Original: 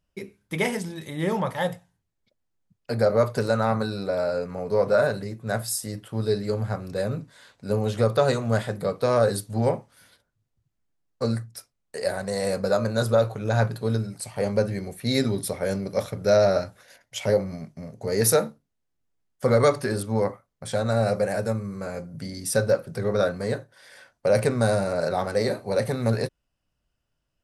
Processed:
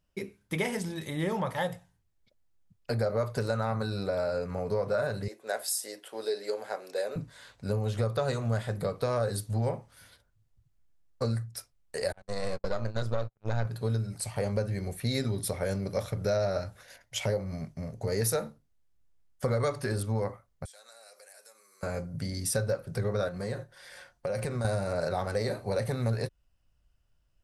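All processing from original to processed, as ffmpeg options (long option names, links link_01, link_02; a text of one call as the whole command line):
ffmpeg -i in.wav -filter_complex "[0:a]asettb=1/sr,asplit=3[link_01][link_02][link_03];[link_01]atrim=end=5.284[link_04];[link_02]atrim=start=5.28:end=7.16,asetpts=PTS-STARTPTS,afade=type=in:duration=0.004:curve=qsin,afade=type=out:start_time=1.876:duration=0.004:curve=qsin,highpass=frequency=380:width=0.5412,highpass=frequency=380:width=1.3066,equalizer=frequency=1200:width_type=o:width=0.39:gain=-7[link_05];[link_03]atrim=start=7.156[link_06];[link_04][link_05]acrossfade=duration=0.004:curve1=hsin:curve2=qsin[link_07];[link_07][link_06]acrossfade=duration=0.004:curve1=qsin:curve2=hsin,asettb=1/sr,asplit=3[link_08][link_09][link_10];[link_08]atrim=end=12.124[link_11];[link_09]atrim=start=12.12:end=13.65,asetpts=PTS-STARTPTS,afade=type=in:duration=0.004:curve=qsin,afade=type=out:start_time=1.526:duration=0.004:curve=qsin,aeval=exprs='if(lt(val(0),0),0.447*val(0),val(0))':channel_layout=same,agate=range=-47dB:threshold=-30dB:ratio=16:release=100:detection=peak,lowpass=6300[link_12];[link_10]atrim=start=13.646[link_13];[link_11][link_12]acrossfade=duration=0.004:curve1=hsin:curve2=qsin[link_14];[link_14][link_13]acrossfade=duration=0.004:curve1=qsin:curve2=hsin,asettb=1/sr,asplit=3[link_15][link_16][link_17];[link_15]atrim=end=20.654[link_18];[link_16]atrim=start=20.65:end=21.83,asetpts=PTS-STARTPTS,afade=type=in:duration=0.004:curve=qsin,afade=type=out:start_time=1.176:duration=0.004:curve=qsin,highpass=frequency=320:width=0.5412,highpass=frequency=320:width=1.3066,aderivative,acompressor=threshold=-53dB:ratio=3:attack=3.2:release=140:knee=1:detection=peak[link_19];[link_17]atrim=start=21.826[link_20];[link_18][link_19]acrossfade=duration=0.004:curve1=hsin:curve2=qsin[link_21];[link_21][link_20]acrossfade=duration=0.004:curve1=qsin:curve2=hsin,asettb=1/sr,asplit=3[link_22][link_23][link_24];[link_22]atrim=end=23.284[link_25];[link_23]atrim=start=23.28:end=24.65,asetpts=PTS-STARTPTS,afade=type=in:duration=0.004:curve=qsin,afade=type=out:start_time=1.366:duration=0.004:curve=qsin,aecho=1:1:5.6:0.37,atrim=end_sample=60417,acompressor=threshold=-30dB:ratio=3:attack=3.2:release=140:knee=1:detection=peak[link_26];[link_24]atrim=start=24.646[link_27];[link_25][link_26]acrossfade=duration=0.004:curve1=hsin:curve2=qsin[link_28];[link_28][link_27]acrossfade=duration=0.004:curve1=qsin:curve2=hsin,asubboost=boost=3:cutoff=110,acompressor=threshold=-28dB:ratio=3" out.wav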